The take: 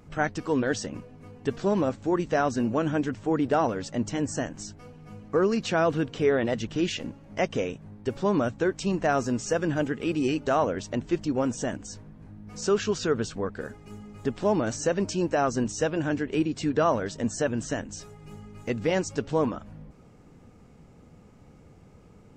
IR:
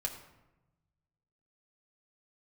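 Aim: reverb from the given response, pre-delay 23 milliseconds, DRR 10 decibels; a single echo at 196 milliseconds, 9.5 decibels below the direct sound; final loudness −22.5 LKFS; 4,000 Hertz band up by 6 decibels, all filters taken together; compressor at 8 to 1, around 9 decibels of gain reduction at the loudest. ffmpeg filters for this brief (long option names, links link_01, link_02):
-filter_complex "[0:a]equalizer=frequency=4000:width_type=o:gain=8.5,acompressor=threshold=-28dB:ratio=8,aecho=1:1:196:0.335,asplit=2[link_01][link_02];[1:a]atrim=start_sample=2205,adelay=23[link_03];[link_02][link_03]afir=irnorm=-1:irlink=0,volume=-11.5dB[link_04];[link_01][link_04]amix=inputs=2:normalize=0,volume=10.5dB"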